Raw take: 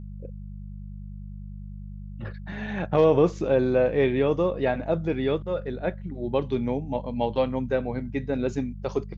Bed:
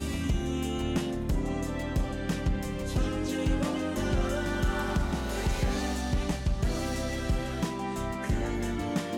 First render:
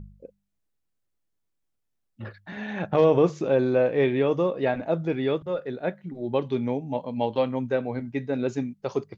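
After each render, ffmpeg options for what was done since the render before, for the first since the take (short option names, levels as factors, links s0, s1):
-af "bandreject=f=50:t=h:w=4,bandreject=f=100:t=h:w=4,bandreject=f=150:t=h:w=4,bandreject=f=200:t=h:w=4"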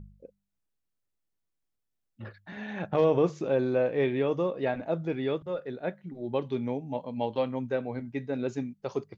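-af "volume=0.596"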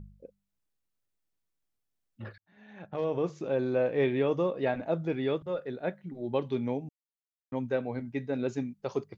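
-filter_complex "[0:a]asplit=4[s0][s1][s2][s3];[s0]atrim=end=2.38,asetpts=PTS-STARTPTS,afade=t=out:st=2.376:d=0.004:c=hsin[s4];[s1]atrim=start=2.38:end=6.89,asetpts=PTS-STARTPTS,afade=t=in:d=1.66,afade=t=out:st=4.506:d=0.004:c=hsin[s5];[s2]atrim=start=6.89:end=7.52,asetpts=PTS-STARTPTS,volume=0[s6];[s3]atrim=start=7.52,asetpts=PTS-STARTPTS,afade=t=in:d=0.004:c=hsin[s7];[s4][s5][s6][s7]concat=n=4:v=0:a=1"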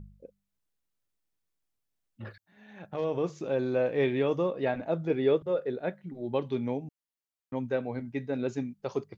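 -filter_complex "[0:a]asettb=1/sr,asplit=3[s0][s1][s2];[s0]atrim=end=2.274[s3];[s1]atrim=start=2.27:end=4.38,asetpts=PTS-STARTPTS,afade=t=in:d=0.004:c=qsin,afade=t=out:st=2.106:d=0.004:c=qsin,highshelf=f=4700:g=6[s4];[s2]atrim=start=4.376[s5];[s3][s4]acrossfade=d=0.004:c1=hsin:c2=qsin[s6];[s6][s5]acrossfade=d=0.004:c1=qsin:c2=hsin,asettb=1/sr,asplit=3[s7][s8][s9];[s7]atrim=end=5.104[s10];[s8]atrim=start=5.1:end=5.8,asetpts=PTS-STARTPTS,afade=t=in:d=0.004:c=qsin,afade=t=out:st=0.696:d=0.004:c=qsin,equalizer=f=440:t=o:w=0.77:g=7[s11];[s9]atrim=start=5.796[s12];[s10][s11]acrossfade=d=0.004:c1=hsin:c2=qsin[s13];[s13][s12]acrossfade=d=0.004:c1=qsin:c2=hsin"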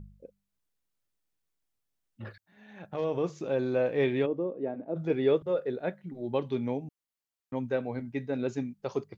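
-filter_complex "[0:a]asplit=3[s0][s1][s2];[s0]afade=t=out:st=4.25:d=0.02[s3];[s1]bandpass=f=320:t=q:w=1.4,afade=t=in:st=4.25:d=0.02,afade=t=out:st=4.95:d=0.02[s4];[s2]afade=t=in:st=4.95:d=0.02[s5];[s3][s4][s5]amix=inputs=3:normalize=0"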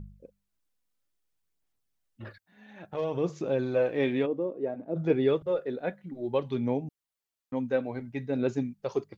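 -af "aphaser=in_gain=1:out_gain=1:delay=4.1:decay=0.34:speed=0.59:type=sinusoidal"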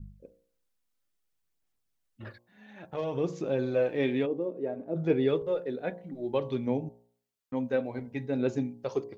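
-af "adynamicequalizer=threshold=0.00794:dfrequency=1100:dqfactor=1:tfrequency=1100:tqfactor=1:attack=5:release=100:ratio=0.375:range=2:mode=cutabove:tftype=bell,bandreject=f=59.03:t=h:w=4,bandreject=f=118.06:t=h:w=4,bandreject=f=177.09:t=h:w=4,bandreject=f=236.12:t=h:w=4,bandreject=f=295.15:t=h:w=4,bandreject=f=354.18:t=h:w=4,bandreject=f=413.21:t=h:w=4,bandreject=f=472.24:t=h:w=4,bandreject=f=531.27:t=h:w=4,bandreject=f=590.3:t=h:w=4,bandreject=f=649.33:t=h:w=4,bandreject=f=708.36:t=h:w=4,bandreject=f=767.39:t=h:w=4,bandreject=f=826.42:t=h:w=4,bandreject=f=885.45:t=h:w=4,bandreject=f=944.48:t=h:w=4,bandreject=f=1003.51:t=h:w=4,bandreject=f=1062.54:t=h:w=4,bandreject=f=1121.57:t=h:w=4"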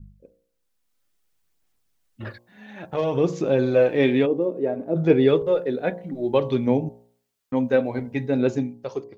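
-af "dynaudnorm=f=140:g=11:m=2.82"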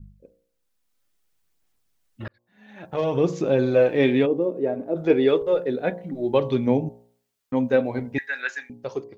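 -filter_complex "[0:a]asettb=1/sr,asplit=3[s0][s1][s2];[s0]atrim=end=4.874[s3];[s1]atrim=start=4.87:end=5.53,asetpts=PTS-STARTPTS,afade=t=in:d=0.004:c=qsin,afade=t=out:st=0.656:d=0.004:c=qsin,equalizer=f=150:w=1.5:g=-11[s4];[s2]atrim=start=5.526[s5];[s3][s4]acrossfade=d=0.004:c1=hsin:c2=qsin[s6];[s6][s5]acrossfade=d=0.004:c1=qsin:c2=hsin,asettb=1/sr,asplit=3[s7][s8][s9];[s7]atrim=end=8.184[s10];[s8]atrim=start=8.18:end=8.7,asetpts=PTS-STARTPTS,afade=t=in:d=0.004:c=qsin,afade=t=out:st=0.516:d=0.004:c=qsin,highpass=f=1700:t=q:w=12[s11];[s9]atrim=start=8.696[s12];[s10][s11]acrossfade=d=0.004:c1=hsin:c2=qsin[s13];[s13][s12]acrossfade=d=0.004:c1=qsin:c2=hsin,asplit=2[s14][s15];[s14]atrim=end=2.28,asetpts=PTS-STARTPTS,afade=t=out:st=2.276:d=0.004:c=hsin[s16];[s15]atrim=start=2.28,asetpts=PTS-STARTPTS,afade=t=in:d=0.76[s17];[s16][s17]concat=n=2:v=0:a=1"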